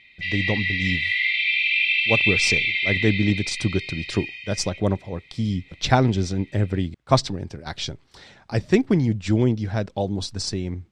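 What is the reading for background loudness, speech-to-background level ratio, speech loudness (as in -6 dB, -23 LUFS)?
-21.0 LUFS, -3.5 dB, -24.5 LUFS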